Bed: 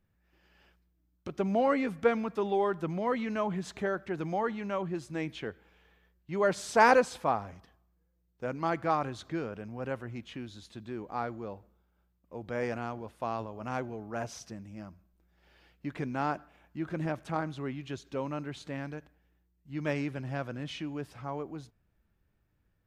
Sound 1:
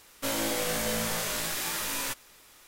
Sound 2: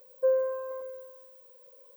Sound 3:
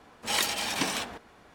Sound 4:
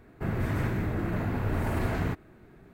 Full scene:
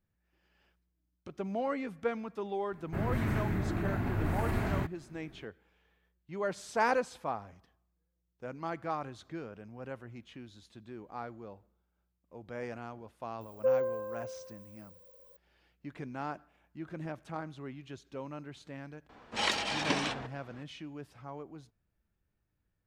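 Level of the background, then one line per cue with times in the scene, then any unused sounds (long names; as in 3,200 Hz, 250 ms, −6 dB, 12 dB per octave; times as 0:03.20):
bed −7 dB
0:02.72: mix in 4 −3 dB + notch filter 490 Hz, Q 6
0:13.41: mix in 2 −3 dB
0:19.09: mix in 3 −0.5 dB + high-frequency loss of the air 110 metres
not used: 1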